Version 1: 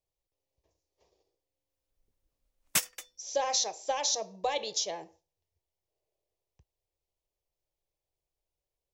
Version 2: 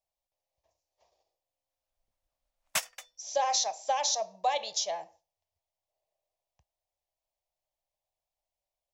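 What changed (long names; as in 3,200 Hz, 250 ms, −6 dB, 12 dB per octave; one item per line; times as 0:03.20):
background: add high-shelf EQ 8,700 Hz −9.5 dB
master: add low shelf with overshoot 520 Hz −7.5 dB, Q 3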